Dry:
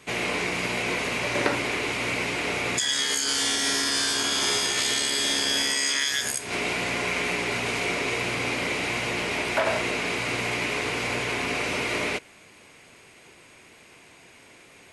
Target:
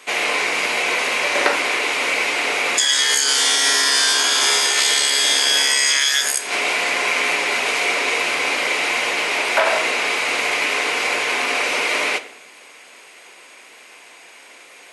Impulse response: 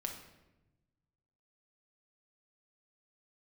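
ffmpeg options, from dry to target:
-filter_complex "[0:a]highpass=530,asplit=2[a][b];[1:a]atrim=start_sample=2205,asetrate=61740,aresample=44100[c];[b][c]afir=irnorm=-1:irlink=0,volume=1.5dB[d];[a][d]amix=inputs=2:normalize=0,volume=4dB"

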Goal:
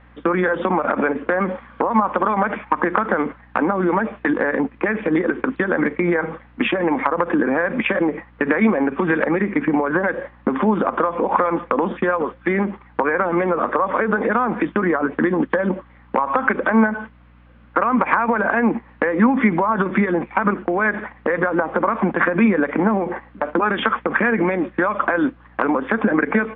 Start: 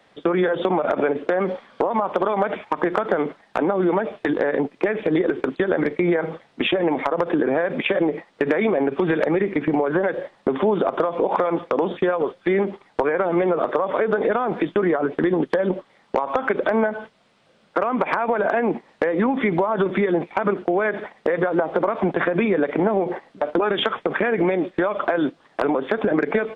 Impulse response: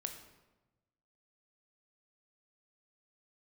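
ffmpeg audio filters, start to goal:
-af "highpass=190,equalizer=f=220:t=q:w=4:g=7,equalizer=f=400:t=q:w=4:g=-8,equalizer=f=650:t=q:w=4:g=-8,equalizer=f=1.1k:t=q:w=4:g=4,equalizer=f=1.6k:t=q:w=4:g=3,lowpass=f=2.6k:w=0.5412,lowpass=f=2.6k:w=1.3066,aeval=exprs='val(0)+0.00251*(sin(2*PI*60*n/s)+sin(2*PI*2*60*n/s)/2+sin(2*PI*3*60*n/s)/3+sin(2*PI*4*60*n/s)/4+sin(2*PI*5*60*n/s)/5)':c=same,volume=4dB"

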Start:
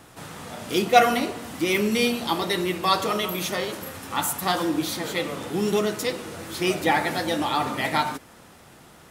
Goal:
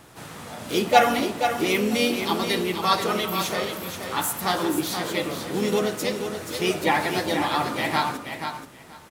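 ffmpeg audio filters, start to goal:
-filter_complex "[0:a]asplit=2[a][b];[b]asetrate=52444,aresample=44100,atempo=0.840896,volume=-8dB[c];[a][c]amix=inputs=2:normalize=0,aecho=1:1:480|960|1440:0.422|0.0675|0.0108,volume=-1dB"

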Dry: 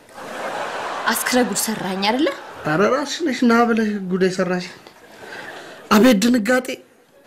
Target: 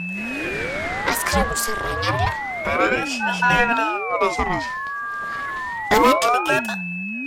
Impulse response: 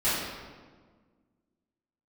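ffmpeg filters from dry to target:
-af "aeval=exprs='0.473*(cos(1*acos(clip(val(0)/0.473,-1,1)))-cos(1*PI/2))+0.0168*(cos(6*acos(clip(val(0)/0.473,-1,1)))-cos(6*PI/2))':c=same,aeval=exprs='val(0)+0.0794*sin(2*PI*1400*n/s)':c=same,aeval=exprs='val(0)*sin(2*PI*720*n/s+720*0.7/0.29*sin(2*PI*0.29*n/s))':c=same"

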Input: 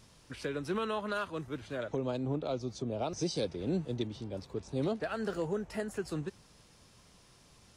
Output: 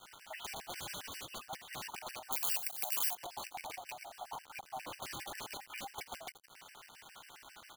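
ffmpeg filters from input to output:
-filter_complex "[0:a]alimiter=level_in=3.5dB:limit=-24dB:level=0:latency=1:release=35,volume=-3.5dB,highpass=f=370:t=q:w=0.5412,highpass=f=370:t=q:w=1.307,lowpass=f=3.3k:t=q:w=0.5176,lowpass=f=3.3k:t=q:w=0.7071,lowpass=f=3.3k:t=q:w=1.932,afreqshift=370,flanger=delay=16:depth=7.1:speed=0.67,aeval=exprs='(mod(84.1*val(0)+1,2)-1)/84.1':c=same,asettb=1/sr,asplit=3[a][b][c];[a]atrim=end=1.044[d];[b]atrim=start=1.04:end=1.44,asetpts=PTS-STARTPTS,afade=t=in:d=0.004:c=qsin,afade=t=out:st=0.396:d=0.004:c=qsin,aeval=exprs='val(0)*sin(2*PI*1900*n/s)':c=same[e];[c]atrim=start=1.436[f];[d][e]acrossfade=d=0.004:c1=hsin:c2=qsin[g];[g][f]acrossfade=d=0.004:c1=qsin:c2=hsin,asettb=1/sr,asplit=3[h][i][j];[h]atrim=end=4.014[k];[i]atrim=start=4.01:end=5.02,asetpts=PTS-STARTPTS,afade=t=in:d=0.004:c=qsin,afade=t=out:st=1.006:d=0.004:c=qsin,highshelf=f=2.9k:g=-10[l];[j]atrim=start=5.016[m];[k][l]acrossfade=d=0.004:c1=hsin:c2=qsin[n];[n][m]acrossfade=d=0.004:c1=qsin:c2=hsin,acompressor=threshold=-56dB:ratio=10,asplit=5[o][p][q][r][s];[p]adelay=82,afreqshift=64,volume=-16.5dB[t];[q]adelay=164,afreqshift=128,volume=-23.4dB[u];[r]adelay=246,afreqshift=192,volume=-30.4dB[v];[s]adelay=328,afreqshift=256,volume=-37.3dB[w];[o][t][u][v][w]amix=inputs=5:normalize=0,acrusher=bits=10:mix=0:aa=0.000001,asettb=1/sr,asplit=3[x][y][z];[x]atrim=end=2.324[aa];[y]atrim=start=2.32:end=3.15,asetpts=PTS-STARTPTS,afade=t=in:d=0.004:c=qsin,afade=t=out:st=0.826:d=0.004:c=qsin,aemphasis=mode=production:type=75fm[ab];[z]atrim=start=3.146[ac];[aa][ab]acrossfade=d=0.004:c1=hsin:c2=qsin[ad];[ad][ac]acrossfade=d=0.004:c1=qsin:c2=hsin,afftfilt=real='re*gt(sin(2*PI*7.4*pts/sr)*(1-2*mod(floor(b*sr/1024/1500),2)),0)':imag='im*gt(sin(2*PI*7.4*pts/sr)*(1-2*mod(floor(b*sr/1024/1500),2)),0)':win_size=1024:overlap=0.75,volume=16dB"

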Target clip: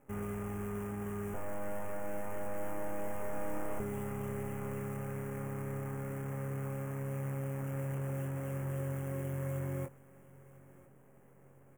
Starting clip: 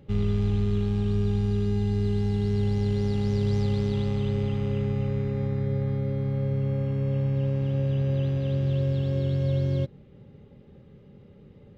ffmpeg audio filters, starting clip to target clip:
-filter_complex "[0:a]highpass=f=730:p=1,highshelf=f=2.9k:g=-6.5,acrusher=bits=8:dc=4:mix=0:aa=0.000001,asettb=1/sr,asplit=3[a][b][c];[a]atrim=end=1.344[d];[b]atrim=start=1.34:end=3.8,asetpts=PTS-STARTPTS,afade=t=in:d=0.004:c=qsin,afade=t=out:st=2.456:d=0.004:c=qsin,aeval=exprs='abs(val(0))':c=same[e];[c]atrim=start=3.796[f];[d][e]acrossfade=d=0.004:c1=hsin:c2=qsin[g];[g][f]acrossfade=d=0.004:c1=qsin:c2=hsin,asuperstop=centerf=4200:order=4:qfactor=0.63,asplit=2[h][i];[i]adelay=23,volume=-7dB[j];[h][j]amix=inputs=2:normalize=0,aecho=1:1:996|1992|2988:0.1|0.045|0.0202"

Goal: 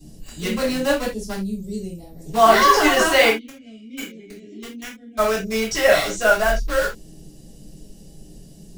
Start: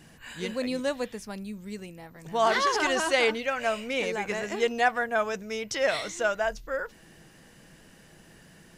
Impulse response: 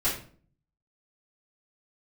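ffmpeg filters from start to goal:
-filter_complex "[0:a]asplit=3[a][b][c];[a]afade=t=out:st=3.28:d=0.02[d];[b]asplit=3[e][f][g];[e]bandpass=f=270:t=q:w=8,volume=0dB[h];[f]bandpass=f=2.29k:t=q:w=8,volume=-6dB[i];[g]bandpass=f=3.01k:t=q:w=8,volume=-9dB[j];[h][i][j]amix=inputs=3:normalize=0,afade=t=in:st=3.28:d=0.02,afade=t=out:st=5.17:d=0.02[k];[c]afade=t=in:st=5.17:d=0.02[l];[d][k][l]amix=inputs=3:normalize=0,acrossover=split=600|3700[m][n][o];[n]acrusher=bits=5:mix=0:aa=0.000001[p];[m][p][o]amix=inputs=3:normalize=0[q];[1:a]atrim=start_sample=2205,afade=t=out:st=0.14:d=0.01,atrim=end_sample=6615[r];[q][r]afir=irnorm=-1:irlink=0"

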